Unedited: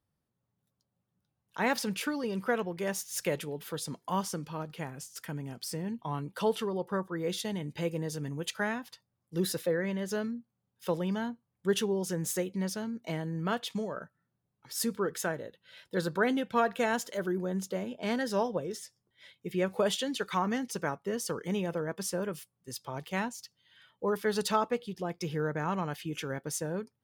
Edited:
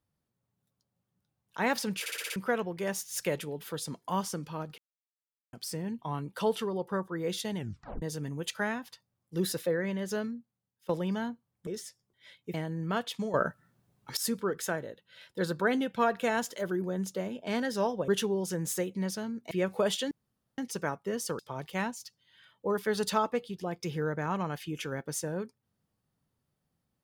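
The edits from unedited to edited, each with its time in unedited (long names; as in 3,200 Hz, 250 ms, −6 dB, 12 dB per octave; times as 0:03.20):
0:02.00: stutter in place 0.06 s, 6 plays
0:04.78–0:05.53: silence
0:07.57: tape stop 0.45 s
0:10.19–0:10.89: fade out, to −17.5 dB
0:11.67–0:13.10: swap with 0:18.64–0:19.51
0:13.90–0:14.73: clip gain +12 dB
0:20.11–0:20.58: fill with room tone
0:21.39–0:22.77: remove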